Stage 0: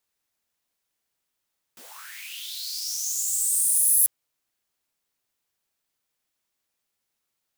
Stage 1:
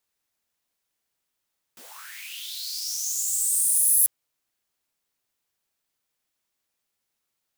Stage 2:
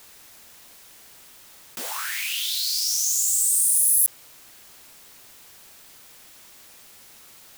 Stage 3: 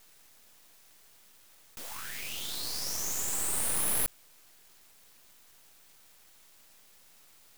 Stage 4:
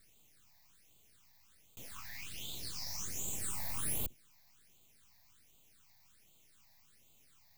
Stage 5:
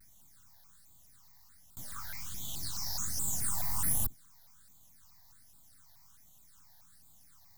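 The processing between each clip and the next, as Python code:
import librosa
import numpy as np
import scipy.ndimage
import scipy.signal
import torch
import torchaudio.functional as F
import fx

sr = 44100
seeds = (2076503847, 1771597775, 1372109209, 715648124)

y1 = x
y2 = fx.env_flatten(y1, sr, amount_pct=50)
y3 = np.maximum(y2, 0.0)
y3 = F.gain(torch.from_numpy(y3), -6.5).numpy()
y4 = fx.octave_divider(y3, sr, octaves=1, level_db=3.0)
y4 = fx.phaser_stages(y4, sr, stages=8, low_hz=390.0, high_hz=1700.0, hz=1.3, feedback_pct=25)
y4 = F.gain(torch.from_numpy(y4), -5.5).numpy()
y5 = fx.fixed_phaser(y4, sr, hz=1100.0, stages=4)
y5 = fx.vibrato_shape(y5, sr, shape='saw_down', rate_hz=4.7, depth_cents=250.0)
y5 = F.gain(torch.from_numpy(y5), 7.0).numpy()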